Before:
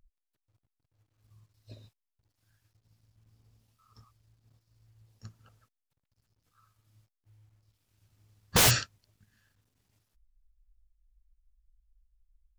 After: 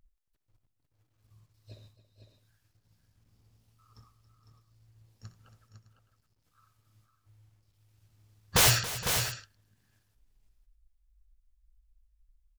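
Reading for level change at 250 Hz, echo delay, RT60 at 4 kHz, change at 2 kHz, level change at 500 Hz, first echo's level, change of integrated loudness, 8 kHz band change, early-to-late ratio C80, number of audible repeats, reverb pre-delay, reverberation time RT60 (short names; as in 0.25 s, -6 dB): -2.5 dB, 60 ms, none, +1.0 dB, 0.0 dB, -14.0 dB, -1.5 dB, +1.0 dB, none, 5, none, none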